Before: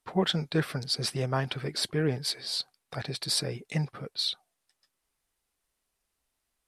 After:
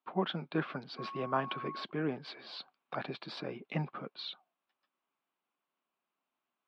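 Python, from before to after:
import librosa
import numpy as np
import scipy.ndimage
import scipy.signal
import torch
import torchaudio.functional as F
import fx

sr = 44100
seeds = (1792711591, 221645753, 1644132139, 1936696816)

y = fx.dmg_tone(x, sr, hz=1100.0, level_db=-44.0, at=(0.97, 1.83), fade=0.02)
y = fx.rider(y, sr, range_db=4, speed_s=0.5)
y = fx.cabinet(y, sr, low_hz=190.0, low_slope=24, high_hz=2900.0, hz=(460.0, 1100.0, 1900.0), db=(-6, 5, -8))
y = y * 10.0 ** (-1.5 / 20.0)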